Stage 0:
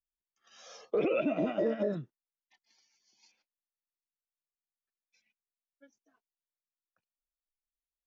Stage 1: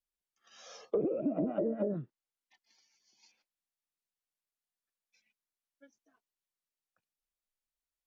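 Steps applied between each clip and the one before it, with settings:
treble cut that deepens with the level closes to 420 Hz, closed at −25.5 dBFS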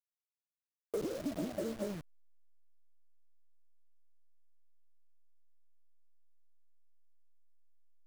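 hold until the input has moved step −36 dBFS
level −5 dB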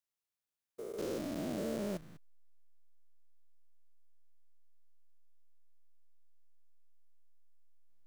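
spectrum averaged block by block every 200 ms
level +3.5 dB

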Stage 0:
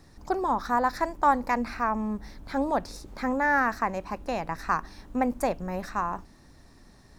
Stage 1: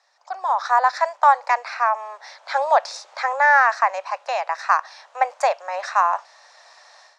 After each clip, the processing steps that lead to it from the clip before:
Butterworth high-pass 590 Hz 48 dB per octave
automatic gain control gain up to 16 dB
low-pass filter 6,900 Hz 24 dB per octave
level −2.5 dB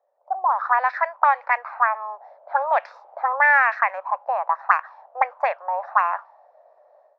envelope-controlled low-pass 560–2,400 Hz up, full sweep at −13.5 dBFS
level −5.5 dB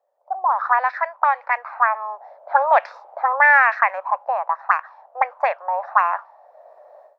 automatic gain control gain up to 10.5 dB
level −1 dB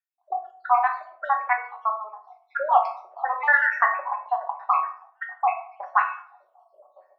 time-frequency cells dropped at random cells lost 74%
tuned comb filter 370 Hz, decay 0.23 s, harmonics all, mix 80%
convolution reverb RT60 0.65 s, pre-delay 5 ms, DRR 3.5 dB
level +8 dB

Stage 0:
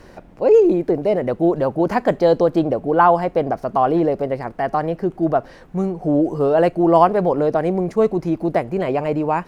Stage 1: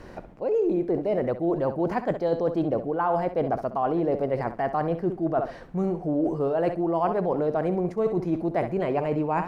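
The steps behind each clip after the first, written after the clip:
high-shelf EQ 3,700 Hz −7 dB
flutter between parallel walls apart 11.3 metres, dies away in 0.33 s
reversed playback
downward compressor 6 to 1, threshold −22 dBFS, peak gain reduction 14 dB
reversed playback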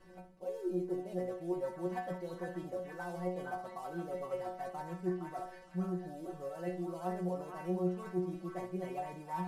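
variable-slope delta modulation 64 kbit/s
stiff-string resonator 180 Hz, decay 0.31 s, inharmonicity 0.002
echo through a band-pass that steps 464 ms, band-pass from 1,400 Hz, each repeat 0.7 octaves, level −0.5 dB
level −2 dB

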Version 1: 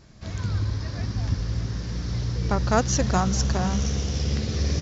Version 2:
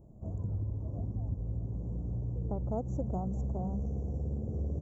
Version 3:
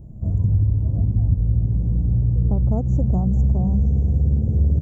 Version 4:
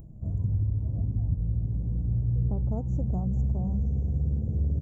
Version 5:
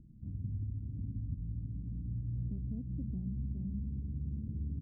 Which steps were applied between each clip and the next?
inverse Chebyshev band-stop filter 2,000–4,400 Hz, stop band 70 dB; downward compressor 2.5 to 1, threshold −31 dBFS, peak gain reduction 9.5 dB; level −3 dB
bass and treble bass +13 dB, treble +2 dB; level +4.5 dB
upward compression, threshold −33 dBFS; flanger 0.68 Hz, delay 5.9 ms, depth 3.2 ms, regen +85%; level −4 dB
transistor ladder low-pass 310 Hz, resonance 50%; level −3 dB

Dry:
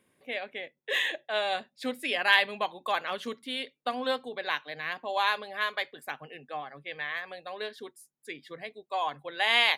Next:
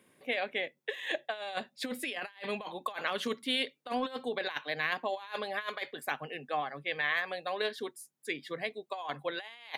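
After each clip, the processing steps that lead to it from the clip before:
high-pass filter 110 Hz
compressor whose output falls as the input rises −34 dBFS, ratio −0.5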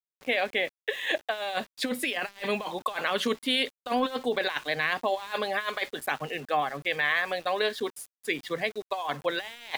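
in parallel at +2 dB: brickwall limiter −23.5 dBFS, peak gain reduction 8 dB
on the sum: centre clipping without the shift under −44 dBFS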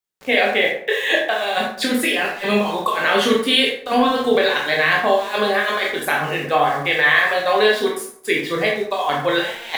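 convolution reverb RT60 0.60 s, pre-delay 12 ms, DRR −2 dB
level +7 dB

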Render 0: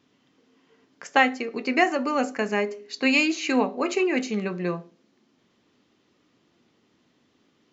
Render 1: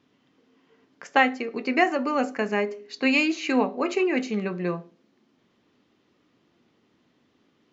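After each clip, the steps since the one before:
high-shelf EQ 6,900 Hz −12 dB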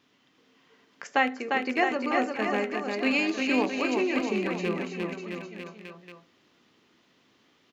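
loose part that buzzes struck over −29 dBFS, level −19 dBFS
on a send: bouncing-ball delay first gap 350 ms, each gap 0.9×, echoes 5
on the sum: one half of a high-frequency compander encoder only
level −4.5 dB

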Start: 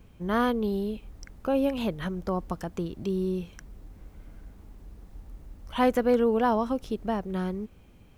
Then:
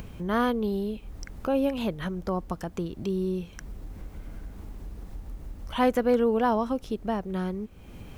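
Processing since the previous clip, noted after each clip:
upward compression, threshold −30 dBFS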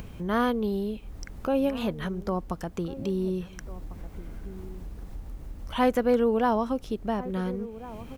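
slap from a distant wall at 240 metres, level −16 dB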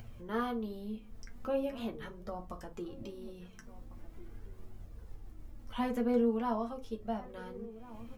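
flanger 0.42 Hz, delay 1.3 ms, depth 3.3 ms, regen +40%
on a send at −3 dB: convolution reverb RT60 0.25 s, pre-delay 7 ms
on the sum: level −8 dB

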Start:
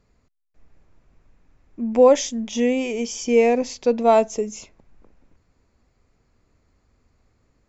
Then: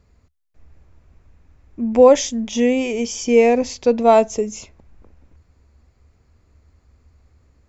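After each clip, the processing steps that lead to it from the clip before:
parametric band 73 Hz +13.5 dB 0.63 octaves
level +3 dB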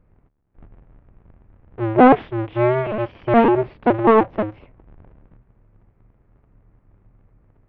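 sub-harmonics by changed cycles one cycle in 2, inverted
Gaussian smoothing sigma 4.2 samples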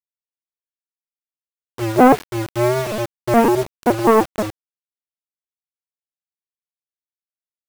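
bit reduction 5 bits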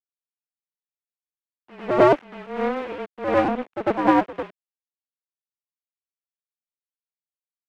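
single-sideband voice off tune −140 Hz 420–3,100 Hz
power curve on the samples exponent 1.4
backwards echo 99 ms −8 dB

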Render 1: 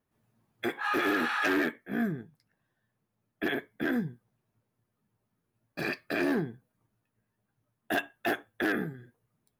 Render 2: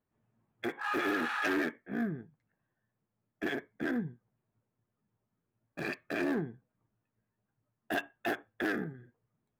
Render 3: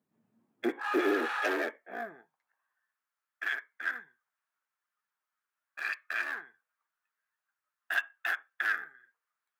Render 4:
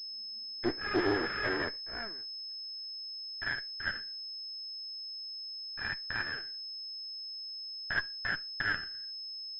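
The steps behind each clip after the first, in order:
adaptive Wiener filter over 9 samples; level −3.5 dB
high-pass filter sweep 190 Hz → 1,400 Hz, 0:00.12–0:02.98
lower of the sound and its delayed copy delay 0.54 ms; switching amplifier with a slow clock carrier 5,200 Hz

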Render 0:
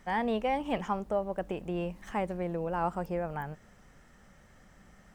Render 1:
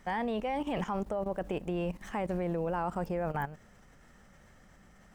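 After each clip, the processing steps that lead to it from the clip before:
output level in coarse steps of 13 dB
level +7 dB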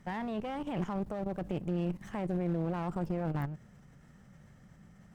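parametric band 140 Hz +14 dB 1.5 octaves
asymmetric clip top −35.5 dBFS, bottom −18 dBFS
level −5 dB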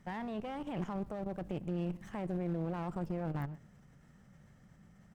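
single-tap delay 126 ms −22 dB
level −3.5 dB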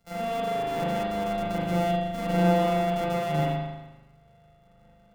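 samples sorted by size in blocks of 64 samples
spring reverb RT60 1.5 s, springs 39 ms, chirp 60 ms, DRR −9 dB
multiband upward and downward expander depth 40%

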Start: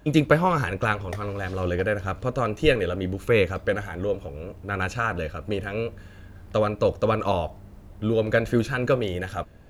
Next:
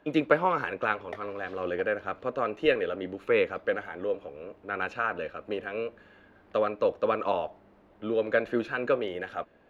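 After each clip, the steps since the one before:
three-way crossover with the lows and the highs turned down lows −21 dB, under 240 Hz, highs −20 dB, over 3,600 Hz
level −3 dB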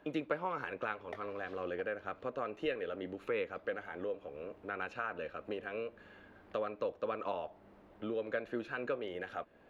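downward compressor 2 to 1, threshold −40 dBFS, peak gain reduction 13.5 dB
level −1 dB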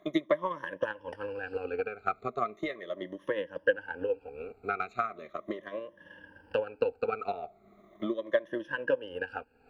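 rippled gain that drifts along the octave scale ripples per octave 1.2, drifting −0.38 Hz, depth 23 dB
transient designer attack +8 dB, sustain −4 dB
level −3.5 dB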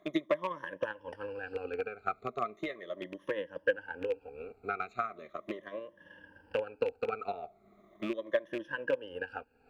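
loose part that buzzes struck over −40 dBFS, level −29 dBFS
level −3 dB

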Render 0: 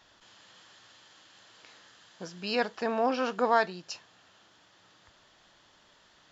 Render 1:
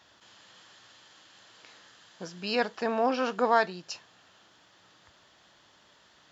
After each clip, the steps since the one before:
high-pass filter 55 Hz
level +1 dB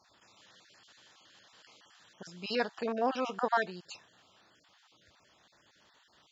time-frequency cells dropped at random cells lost 26%
level −3.5 dB

